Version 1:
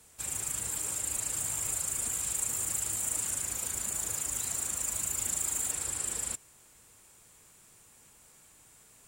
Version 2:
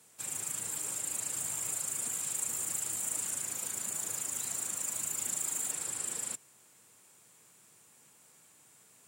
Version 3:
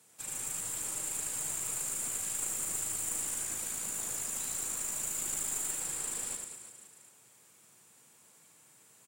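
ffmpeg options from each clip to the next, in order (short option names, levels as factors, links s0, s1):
-af "highpass=f=120:w=0.5412,highpass=f=120:w=1.3066,volume=0.75"
-af "aecho=1:1:90|202.5|343.1|518.9|738.6:0.631|0.398|0.251|0.158|0.1,aeval=exprs='(tanh(11.2*val(0)+0.5)-tanh(0.5))/11.2':c=same"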